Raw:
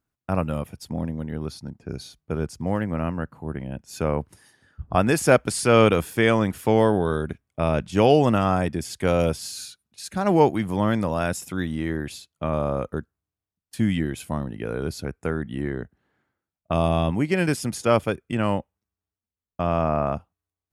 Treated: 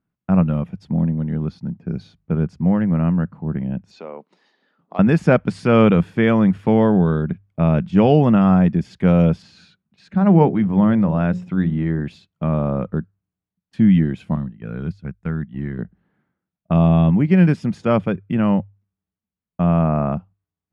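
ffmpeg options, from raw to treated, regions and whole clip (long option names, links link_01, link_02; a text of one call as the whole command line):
ffmpeg -i in.wav -filter_complex "[0:a]asettb=1/sr,asplit=3[link_01][link_02][link_03];[link_01]atrim=end=3.914[link_04];[link_02]atrim=start=3.91:end=4.99,asetpts=PTS-STARTPTS,afade=type=in:duration=0.004:curve=qsin,afade=type=out:start_time=1.076:duration=0.004:curve=qsin,acompressor=threshold=-41dB:ratio=1.5:attack=3.2:release=140:knee=1:detection=peak,asoftclip=type=hard:threshold=-16.5dB,highpass=frequency=310:width=0.5412,highpass=frequency=310:width=1.3066,equalizer=frequency=320:width_type=q:width=4:gain=-5,equalizer=frequency=1600:width_type=q:width=4:gain=-8,equalizer=frequency=4100:width_type=q:width=4:gain=9,lowpass=frequency=7600:width=0.5412,lowpass=frequency=7600:width=1.3066[link_05];[link_03]atrim=start=4.986[link_06];[link_04][link_05]acrossfade=duration=0.004:curve1=hsin:curve2=qsin[link_07];[link_07][link_06]acrossfade=duration=0.004:curve1=qsin:curve2=hsin,asettb=1/sr,asplit=3[link_08][link_09][link_10];[link_08]atrim=end=9.424[link_11];[link_09]atrim=start=9.42:end=12.01,asetpts=PTS-STARTPTS,afade=type=in:duration=0.004:curve=qsin,afade=type=out:start_time=2.586:duration=0.004:curve=qsin,aemphasis=mode=reproduction:type=50fm,bandreject=frequency=60:width_type=h:width=6,bandreject=frequency=120:width_type=h:width=6,bandreject=frequency=180:width_type=h:width=6,bandreject=frequency=240:width_type=h:width=6,bandreject=frequency=300:width_type=h:width=6,bandreject=frequency=360:width_type=h:width=6,bandreject=frequency=420:width_type=h:width=6,bandreject=frequency=480:width_type=h:width=6,bandreject=frequency=540:width_type=h:width=6[link_12];[link_10]atrim=start=12.006[link_13];[link_11][link_12]acrossfade=duration=0.004:curve1=hsin:curve2=qsin[link_14];[link_14][link_13]acrossfade=duration=0.004:curve1=qsin:curve2=hsin,asettb=1/sr,asplit=3[link_15][link_16][link_17];[link_15]atrim=end=14.354[link_18];[link_16]atrim=start=14.35:end=15.79,asetpts=PTS-STARTPTS,afade=type=in:duration=0.004:curve=qsin,afade=type=out:start_time=1.436:duration=0.004:curve=qsin,agate=range=-12dB:threshold=-31dB:ratio=16:release=100:detection=peak,equalizer=frequency=470:width=0.53:gain=-8.5[link_19];[link_17]atrim=start=15.786[link_20];[link_18][link_19]acrossfade=duration=0.004:curve1=hsin:curve2=qsin[link_21];[link_21][link_20]acrossfade=duration=0.004:curve1=qsin:curve2=hsin,lowpass=2800,equalizer=frequency=180:width=1.9:gain=14,bandreject=frequency=50:width_type=h:width=6,bandreject=frequency=100:width_type=h:width=6" out.wav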